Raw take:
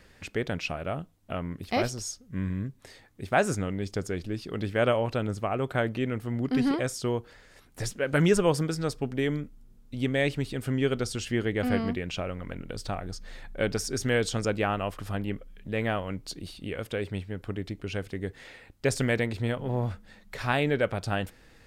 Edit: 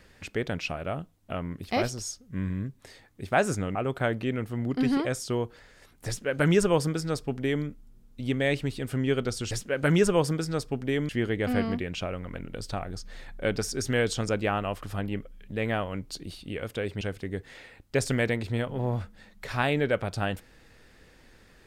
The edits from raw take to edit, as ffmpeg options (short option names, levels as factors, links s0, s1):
-filter_complex "[0:a]asplit=5[s0][s1][s2][s3][s4];[s0]atrim=end=3.752[s5];[s1]atrim=start=5.488:end=11.252[s6];[s2]atrim=start=7.808:end=9.392[s7];[s3]atrim=start=11.248:end=17.172[s8];[s4]atrim=start=17.908[s9];[s5][s6]acrossfade=d=0.004:c1=hsin:c2=hsin[s10];[s10][s7]acrossfade=d=0.004:c1=hsin:c2=hsin[s11];[s11][s8]acrossfade=d=0.004:c1=hsin:c2=hsin[s12];[s12][s9]acrossfade=d=0.004:c1=hsin:c2=hsin"